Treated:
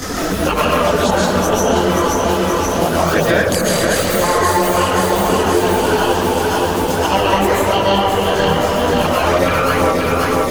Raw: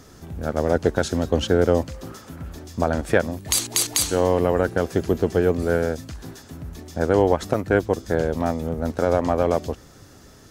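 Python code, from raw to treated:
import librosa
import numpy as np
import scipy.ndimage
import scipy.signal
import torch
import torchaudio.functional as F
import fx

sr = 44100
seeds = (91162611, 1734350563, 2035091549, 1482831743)

p1 = fx.pitch_trill(x, sr, semitones=11.5, every_ms=156)
p2 = fx.high_shelf(p1, sr, hz=2000.0, db=8.5)
p3 = fx.rev_freeverb(p2, sr, rt60_s=1.9, hf_ratio=0.55, predelay_ms=100, drr_db=-9.0)
p4 = fx.chorus_voices(p3, sr, voices=4, hz=1.1, base_ms=23, depth_ms=3.0, mix_pct=70)
p5 = p4 + fx.echo_feedback(p4, sr, ms=528, feedback_pct=46, wet_db=-6.5, dry=0)
p6 = fx.band_squash(p5, sr, depth_pct=100)
y = F.gain(torch.from_numpy(p6), -2.5).numpy()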